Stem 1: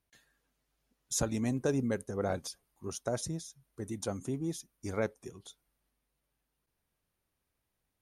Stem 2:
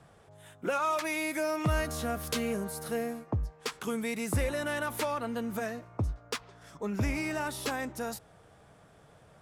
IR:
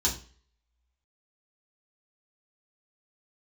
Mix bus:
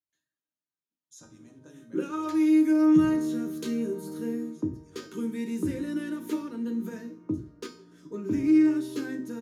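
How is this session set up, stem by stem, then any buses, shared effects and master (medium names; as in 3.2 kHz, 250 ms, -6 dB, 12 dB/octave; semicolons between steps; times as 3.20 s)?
-12.0 dB, 0.00 s, send -9 dB, none
0.0 dB, 1.30 s, send -11 dB, high-pass 140 Hz 12 dB/octave; resonant low shelf 510 Hz +10.5 dB, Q 3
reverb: on, RT60 0.40 s, pre-delay 3 ms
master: high-pass 99 Hz 24 dB/octave; feedback comb 310 Hz, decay 0.45 s, harmonics all, mix 80%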